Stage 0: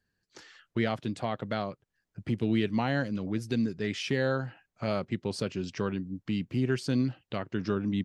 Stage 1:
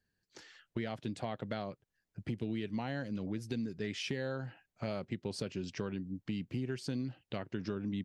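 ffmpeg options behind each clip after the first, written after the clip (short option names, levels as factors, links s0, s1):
-af "equalizer=f=1200:w=2.8:g=-4,acompressor=threshold=0.0316:ratio=6,volume=0.708"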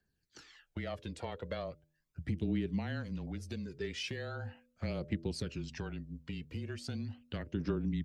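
-af "bandreject=f=88.17:t=h:w=4,bandreject=f=176.34:t=h:w=4,bandreject=f=264.51:t=h:w=4,bandreject=f=352.68:t=h:w=4,bandreject=f=440.85:t=h:w=4,bandreject=f=529.02:t=h:w=4,bandreject=f=617.19:t=h:w=4,afreqshift=-23,aphaser=in_gain=1:out_gain=1:delay=2.3:decay=0.52:speed=0.39:type=triangular,volume=0.794"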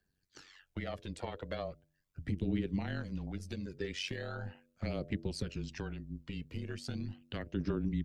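-af "tremolo=f=94:d=0.667,volume=1.41"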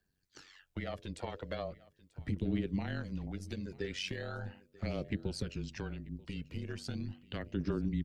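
-af "aecho=1:1:938:0.0841"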